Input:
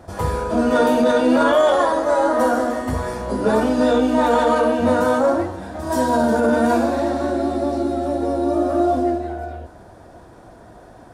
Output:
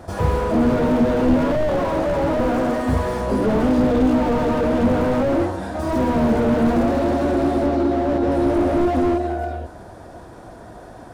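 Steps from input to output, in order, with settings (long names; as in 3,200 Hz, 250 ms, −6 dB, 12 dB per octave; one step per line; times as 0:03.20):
0:07.66–0:08.32: Bessel low-pass filter 3,800 Hz, order 2
slew-rate limiting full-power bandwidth 42 Hz
level +4 dB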